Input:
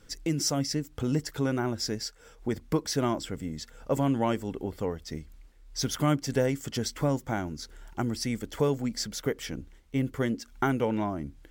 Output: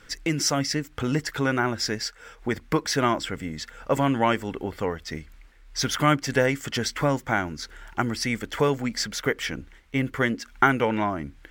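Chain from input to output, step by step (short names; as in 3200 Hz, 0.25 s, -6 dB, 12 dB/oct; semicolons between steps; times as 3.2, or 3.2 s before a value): bell 1800 Hz +11.5 dB 2.1 oct; gain +1.5 dB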